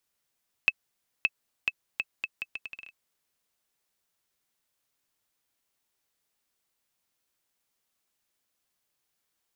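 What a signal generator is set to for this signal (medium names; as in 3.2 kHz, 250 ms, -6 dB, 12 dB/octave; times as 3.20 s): bouncing ball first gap 0.57 s, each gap 0.75, 2.61 kHz, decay 41 ms -8.5 dBFS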